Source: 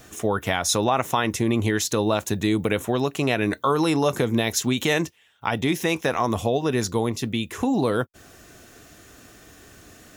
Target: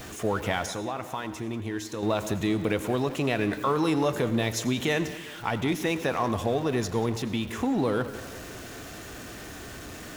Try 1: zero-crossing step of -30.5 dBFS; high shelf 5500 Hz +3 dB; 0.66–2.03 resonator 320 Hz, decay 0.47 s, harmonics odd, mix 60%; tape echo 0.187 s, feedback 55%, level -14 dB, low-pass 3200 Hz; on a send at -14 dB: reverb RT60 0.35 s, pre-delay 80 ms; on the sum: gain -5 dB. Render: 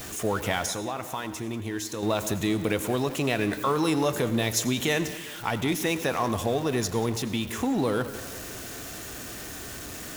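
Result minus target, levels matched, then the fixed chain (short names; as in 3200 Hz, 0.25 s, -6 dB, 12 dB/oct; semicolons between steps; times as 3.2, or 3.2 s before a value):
8000 Hz band +6.5 dB
zero-crossing step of -30.5 dBFS; high shelf 5500 Hz -7 dB; 0.66–2.03 resonator 320 Hz, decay 0.47 s, harmonics odd, mix 60%; tape echo 0.187 s, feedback 55%, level -14 dB, low-pass 3200 Hz; on a send at -14 dB: reverb RT60 0.35 s, pre-delay 80 ms; on the sum: gain -5 dB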